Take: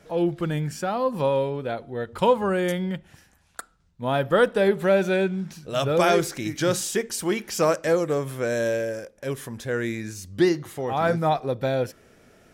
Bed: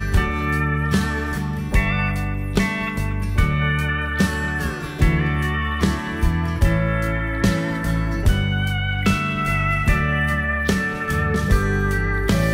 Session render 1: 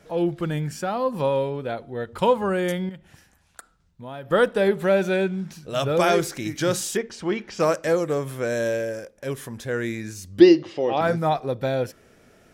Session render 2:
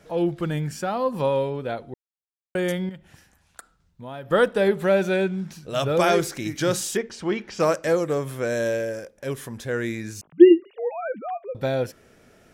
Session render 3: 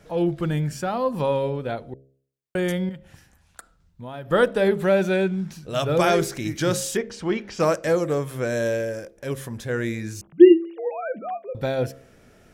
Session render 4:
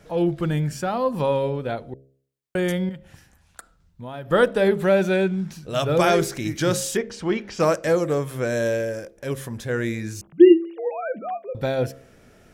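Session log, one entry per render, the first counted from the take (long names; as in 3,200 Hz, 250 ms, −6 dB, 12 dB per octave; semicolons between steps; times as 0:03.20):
0:02.89–0:04.31: downward compressor 2.5 to 1, threshold −39 dBFS; 0:06.97–0:07.60: high-frequency loss of the air 150 metres; 0:10.40–0:11.01: loudspeaker in its box 120–5,400 Hz, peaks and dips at 130 Hz −5 dB, 330 Hz +10 dB, 550 Hz +9 dB, 1,400 Hz −6 dB, 2,800 Hz +10 dB, 5,000 Hz +9 dB
0:01.94–0:02.55: silence; 0:10.21–0:11.55: three sine waves on the formant tracks
low-shelf EQ 140 Hz +6.5 dB; hum removal 67.22 Hz, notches 10
level +1 dB; brickwall limiter −3 dBFS, peak gain reduction 2.5 dB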